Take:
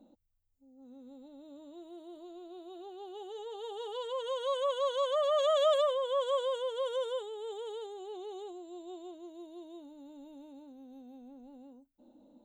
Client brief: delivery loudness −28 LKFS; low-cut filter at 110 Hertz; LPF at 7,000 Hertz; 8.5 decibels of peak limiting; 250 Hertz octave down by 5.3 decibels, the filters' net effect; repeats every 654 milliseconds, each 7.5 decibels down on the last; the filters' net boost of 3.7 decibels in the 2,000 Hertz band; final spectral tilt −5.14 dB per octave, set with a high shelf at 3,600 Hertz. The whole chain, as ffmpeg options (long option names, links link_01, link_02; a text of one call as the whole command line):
ffmpeg -i in.wav -af "highpass=110,lowpass=7000,equalizer=frequency=250:width_type=o:gain=-8.5,equalizer=frequency=2000:width_type=o:gain=4,highshelf=frequency=3600:gain=5,alimiter=level_in=2dB:limit=-24dB:level=0:latency=1,volume=-2dB,aecho=1:1:654|1308|1962|2616|3270:0.422|0.177|0.0744|0.0312|0.0131,volume=7.5dB" out.wav